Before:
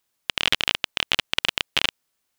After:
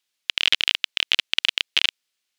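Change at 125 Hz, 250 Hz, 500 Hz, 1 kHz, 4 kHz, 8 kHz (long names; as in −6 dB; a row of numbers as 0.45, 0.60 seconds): below −10 dB, can't be measured, −9.0 dB, −7.5 dB, +3.0 dB, −1.5 dB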